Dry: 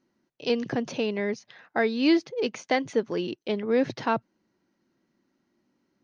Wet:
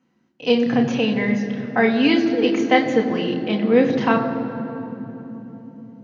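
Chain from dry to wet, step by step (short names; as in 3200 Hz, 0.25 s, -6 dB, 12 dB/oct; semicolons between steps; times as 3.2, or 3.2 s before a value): notch 420 Hz, Q 12; reverb RT60 3.6 s, pre-delay 4 ms, DRR 1 dB; gain -1.5 dB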